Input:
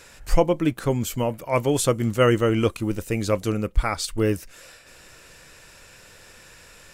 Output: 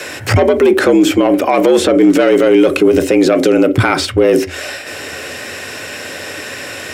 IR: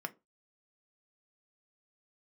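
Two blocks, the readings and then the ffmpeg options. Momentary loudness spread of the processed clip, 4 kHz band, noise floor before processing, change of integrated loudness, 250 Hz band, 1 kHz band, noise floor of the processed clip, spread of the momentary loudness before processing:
15 LU, +12.5 dB, -49 dBFS, +12.0 dB, +14.0 dB, +10.5 dB, -27 dBFS, 7 LU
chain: -filter_complex "[0:a]asoftclip=type=tanh:threshold=-17dB,asplit=2[a][b];[b]equalizer=f=125:t=o:w=1:g=-7,equalizer=f=250:t=o:w=1:g=8,equalizer=f=1k:t=o:w=1:g=-11,equalizer=f=4k:t=o:w=1:g=3,equalizer=f=8k:t=o:w=1:g=-6[c];[1:a]atrim=start_sample=2205,highshelf=f=5.4k:g=-7.5[d];[c][d]afir=irnorm=-1:irlink=0,volume=4.5dB[e];[a][e]amix=inputs=2:normalize=0,acrossover=split=2800|7600[f][g][h];[f]acompressor=threshold=-16dB:ratio=4[i];[g]acompressor=threshold=-41dB:ratio=4[j];[h]acompressor=threshold=-55dB:ratio=4[k];[i][j][k]amix=inputs=3:normalize=0,afreqshift=76,alimiter=level_in=18dB:limit=-1dB:release=50:level=0:latency=1,volume=-1dB"

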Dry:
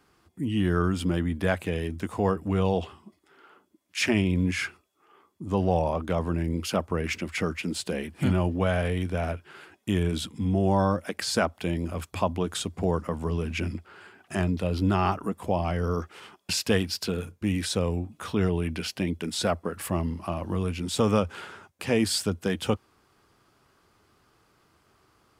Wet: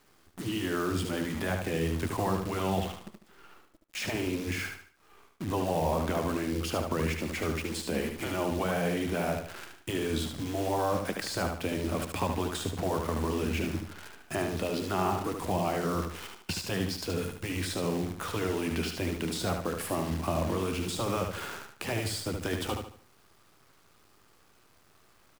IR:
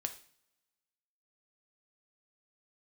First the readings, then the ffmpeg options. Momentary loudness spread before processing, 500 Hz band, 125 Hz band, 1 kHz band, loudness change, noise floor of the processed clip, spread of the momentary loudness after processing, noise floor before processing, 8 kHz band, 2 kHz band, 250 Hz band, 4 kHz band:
8 LU, -3.0 dB, -6.0 dB, -1.5 dB, -4.0 dB, -62 dBFS, 7 LU, -66 dBFS, -3.0 dB, -2.5 dB, -4.5 dB, -3.5 dB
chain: -filter_complex "[0:a]acrossover=split=130|960[a][b][c];[a]acompressor=threshold=-34dB:ratio=4[d];[b]acompressor=threshold=-28dB:ratio=4[e];[c]acompressor=threshold=-40dB:ratio=4[f];[d][e][f]amix=inputs=3:normalize=0,acrusher=bits=8:dc=4:mix=0:aa=0.000001,afftfilt=real='re*lt(hypot(re,im),0.224)':imag='im*lt(hypot(re,im),0.224)':win_size=1024:overlap=0.75,asplit=2[g][h];[h]aecho=0:1:74|148|222|296:0.531|0.191|0.0688|0.0248[i];[g][i]amix=inputs=2:normalize=0,volume=2.5dB"

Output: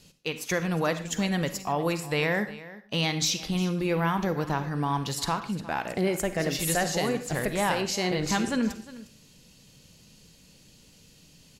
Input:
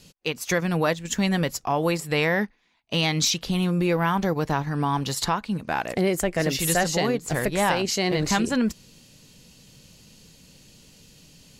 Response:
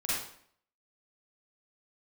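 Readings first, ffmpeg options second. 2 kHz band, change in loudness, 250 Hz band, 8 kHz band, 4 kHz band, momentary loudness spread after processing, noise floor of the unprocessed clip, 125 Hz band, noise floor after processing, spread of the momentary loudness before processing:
-3.5 dB, -3.5 dB, -3.5 dB, -3.5 dB, -3.5 dB, 6 LU, -55 dBFS, -3.5 dB, -56 dBFS, 5 LU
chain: -filter_complex "[0:a]aecho=1:1:356:0.133,asplit=2[a][b];[1:a]atrim=start_sample=2205,afade=t=out:st=0.21:d=0.01,atrim=end_sample=9702[c];[b][c]afir=irnorm=-1:irlink=0,volume=-15.5dB[d];[a][d]amix=inputs=2:normalize=0,volume=-5dB"

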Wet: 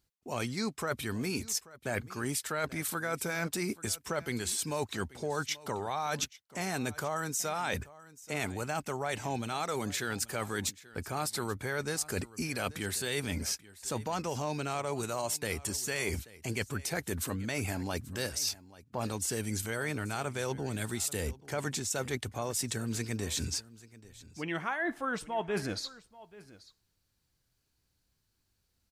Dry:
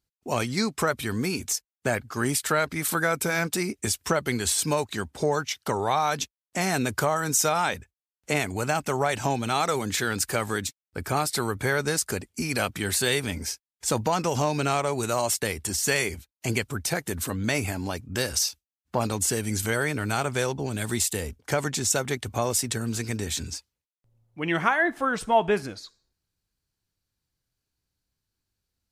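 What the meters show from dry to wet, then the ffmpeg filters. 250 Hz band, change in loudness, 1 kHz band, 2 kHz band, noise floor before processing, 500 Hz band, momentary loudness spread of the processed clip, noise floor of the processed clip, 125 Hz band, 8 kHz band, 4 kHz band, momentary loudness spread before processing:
-7.0 dB, -8.0 dB, -9.5 dB, -8.5 dB, under -85 dBFS, -8.5 dB, 5 LU, -77 dBFS, -7.0 dB, -7.5 dB, -7.0 dB, 7 LU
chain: -af "areverse,acompressor=threshold=-36dB:ratio=6,areverse,aecho=1:1:834:0.106,volume=4.5dB"

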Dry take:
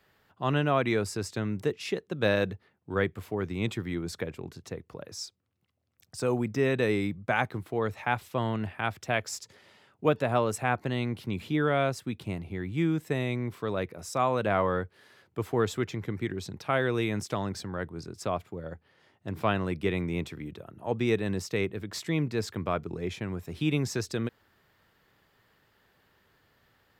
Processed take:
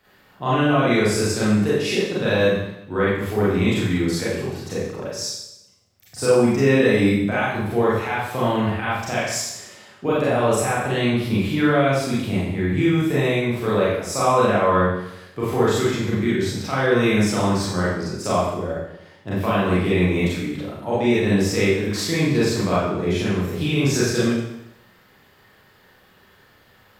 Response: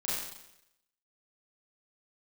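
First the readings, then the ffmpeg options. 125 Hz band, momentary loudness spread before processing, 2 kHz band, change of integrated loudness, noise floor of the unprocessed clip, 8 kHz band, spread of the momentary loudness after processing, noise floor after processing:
+9.0 dB, 13 LU, +9.0 dB, +9.5 dB, -69 dBFS, +12.5 dB, 11 LU, -54 dBFS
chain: -filter_complex "[0:a]alimiter=limit=-19.5dB:level=0:latency=1:release=150[a];[1:a]atrim=start_sample=2205[b];[a][b]afir=irnorm=-1:irlink=0,volume=7dB"

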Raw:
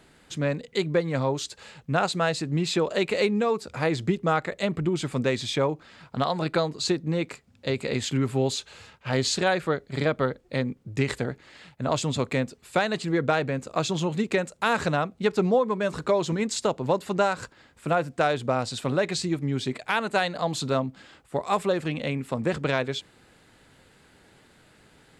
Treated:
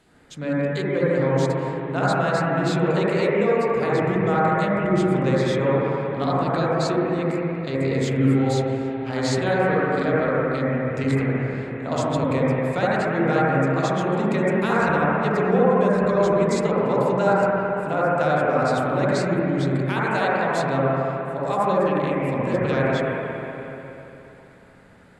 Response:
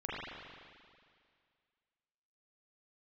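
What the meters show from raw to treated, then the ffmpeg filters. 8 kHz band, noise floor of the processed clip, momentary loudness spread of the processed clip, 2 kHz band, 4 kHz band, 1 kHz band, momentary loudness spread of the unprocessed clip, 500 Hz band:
-4.5 dB, -44 dBFS, 6 LU, +4.0 dB, -4.5 dB, +5.5 dB, 7 LU, +5.5 dB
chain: -filter_complex "[1:a]atrim=start_sample=2205,asetrate=27783,aresample=44100[a];[0:a][a]afir=irnorm=-1:irlink=0,volume=-3dB"

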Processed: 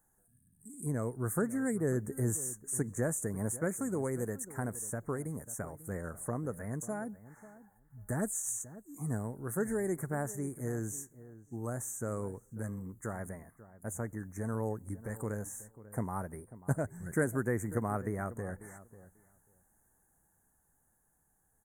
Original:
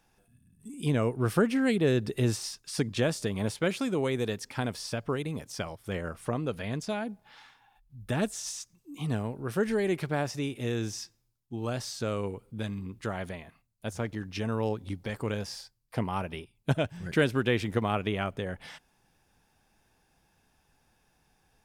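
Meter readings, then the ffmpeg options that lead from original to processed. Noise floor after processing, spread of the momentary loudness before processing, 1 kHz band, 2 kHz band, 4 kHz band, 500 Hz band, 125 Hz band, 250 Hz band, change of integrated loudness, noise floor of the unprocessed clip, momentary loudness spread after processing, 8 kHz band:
-73 dBFS, 12 LU, -6.0 dB, -8.0 dB, under -30 dB, -6.0 dB, -4.5 dB, -5.5 dB, -5.0 dB, -70 dBFS, 12 LU, +3.0 dB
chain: -filter_complex "[0:a]asuperstop=centerf=3600:order=12:qfactor=0.77,equalizer=f=4.8k:t=o:w=0.4:g=-14.5,dynaudnorm=f=340:g=11:m=3dB,bass=f=250:g=2,treble=f=4k:g=14,asplit=2[a][b];[b]adelay=542,lowpass=f=1.3k:p=1,volume=-16dB,asplit=2[c][d];[d]adelay=542,lowpass=f=1.3k:p=1,volume=0.15[e];[c][e]amix=inputs=2:normalize=0[f];[a][f]amix=inputs=2:normalize=0,volume=-9dB"

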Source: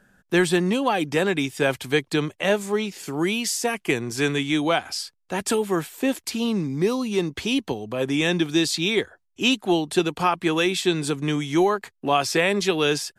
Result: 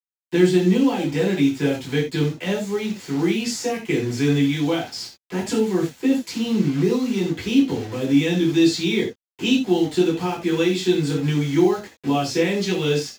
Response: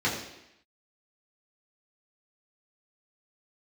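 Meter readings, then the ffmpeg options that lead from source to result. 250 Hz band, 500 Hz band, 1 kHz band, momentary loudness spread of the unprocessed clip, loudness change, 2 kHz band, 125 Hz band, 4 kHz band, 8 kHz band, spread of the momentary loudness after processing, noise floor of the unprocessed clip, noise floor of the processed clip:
+5.0 dB, +1.5 dB, -5.0 dB, 5 LU, +2.0 dB, -4.0 dB, +5.5 dB, -2.0 dB, -3.0 dB, 8 LU, -70 dBFS, under -85 dBFS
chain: -filter_complex "[0:a]acrusher=bits=5:mix=0:aa=0.000001,acrossover=split=470|3000[a][b][c];[b]acompressor=threshold=-41dB:ratio=2[d];[a][d][c]amix=inputs=3:normalize=0[e];[1:a]atrim=start_sample=2205,atrim=end_sample=4410[f];[e][f]afir=irnorm=-1:irlink=0,volume=-9dB"

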